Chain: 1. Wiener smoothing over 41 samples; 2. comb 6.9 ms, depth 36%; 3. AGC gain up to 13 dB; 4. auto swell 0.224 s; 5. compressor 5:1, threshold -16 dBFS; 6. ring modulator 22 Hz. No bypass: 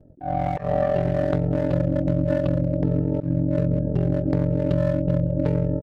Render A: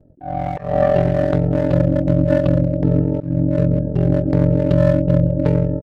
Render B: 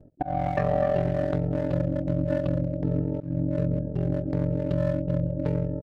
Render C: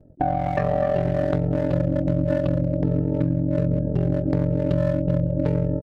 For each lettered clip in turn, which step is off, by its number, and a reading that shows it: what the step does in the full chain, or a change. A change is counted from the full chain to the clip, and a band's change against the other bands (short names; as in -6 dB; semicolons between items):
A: 5, momentary loudness spread change +3 LU; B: 3, momentary loudness spread change +2 LU; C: 4, 1 kHz band +1.5 dB